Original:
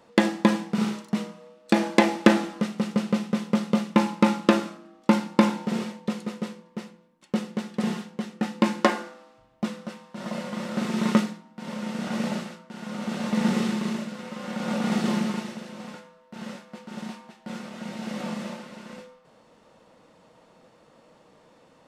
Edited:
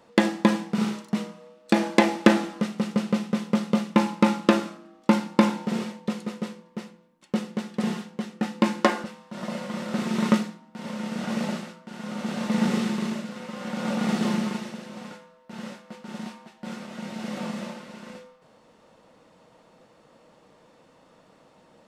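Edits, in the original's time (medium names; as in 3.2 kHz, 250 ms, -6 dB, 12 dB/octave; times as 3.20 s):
9.04–9.87 s: delete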